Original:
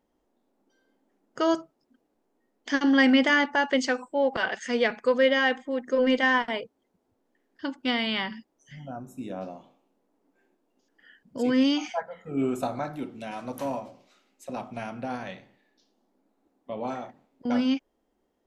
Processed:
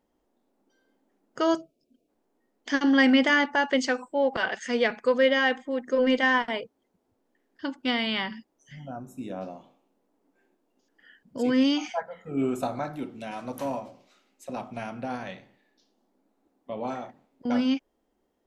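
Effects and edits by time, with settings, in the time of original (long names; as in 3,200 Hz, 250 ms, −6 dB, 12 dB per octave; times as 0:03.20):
0:01.57–0:02.08: gain on a spectral selection 730–2,200 Hz −18 dB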